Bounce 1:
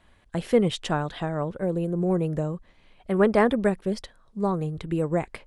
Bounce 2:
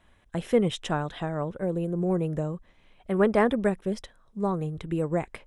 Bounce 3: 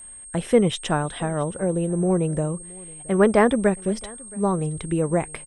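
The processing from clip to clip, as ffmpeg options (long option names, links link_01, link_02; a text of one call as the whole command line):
ffmpeg -i in.wav -af "bandreject=frequency=4500:width=6,volume=-2dB" out.wav
ffmpeg -i in.wav -af "aeval=exprs='val(0)+0.00631*sin(2*PI*8500*n/s)':channel_layout=same,aecho=1:1:672:0.0668,volume=5dB" out.wav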